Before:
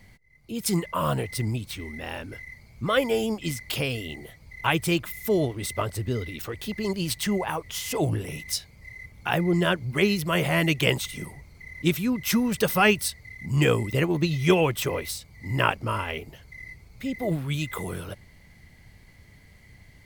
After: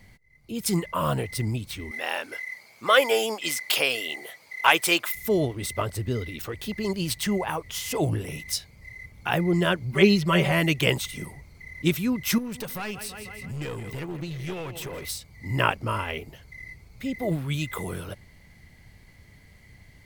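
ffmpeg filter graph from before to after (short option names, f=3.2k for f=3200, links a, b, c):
-filter_complex "[0:a]asettb=1/sr,asplit=3[a][b][c];[a]atrim=end=1.914[d];[b]atrim=start=1.91:end=5.15,asetpts=PTS-STARTPTS,afade=t=in:d=0.004:c=qsin,afade=t=out:st=3.236:d=0.004:c=qsin,highpass=580,acontrast=86[e];[c]atrim=start=5.146[f];[d][e]acrossfade=d=0.004:c1=hsin:c2=qsin[g];[g][f]acrossfade=d=0.004:c1=qsin:c2=hsin,asettb=1/sr,asplit=3[h][i][j];[h]atrim=end=9.934[k];[i]atrim=start=9.93:end=10.52,asetpts=PTS-STARTPTS,afade=t=in:d=0.004:c=qsin,afade=t=out:st=0.586:d=0.004:c=qsin,acrossover=split=6900[l][m];[m]acompressor=threshold=-49dB:ratio=4:attack=1:release=60[n];[l][n]amix=inputs=2:normalize=0,aecho=1:1:5.2:0.87,atrim=end_sample=26019[o];[j]atrim=start=10.516[p];[k][o]acrossfade=d=0.004:c1=hsin:c2=qsin[q];[q][p]acrossfade=d=0.004:c1=qsin:c2=hsin,asettb=1/sr,asplit=3[r][s][t];[r]atrim=end=12.384[u];[s]atrim=start=12.38:end=15.05,asetpts=PTS-STARTPTS,afade=t=in:d=0.004:c=qsin,afade=t=out:st=2.666:d=0.004:c=qsin,aecho=1:1:163|326|489|652|815:0.126|0.0743|0.0438|0.0259|0.0153,atrim=end_sample=117747,acompressor=threshold=-33dB:ratio=2.5:attack=3.2:release=140:knee=1:detection=peak,aeval=exprs='clip(val(0),-1,0.0211)':c=same[v];[t]atrim=start=15.046[w];[u][v]acrossfade=d=0.004:c1=hsin:c2=qsin[x];[x][w]acrossfade=d=0.004:c1=qsin:c2=hsin"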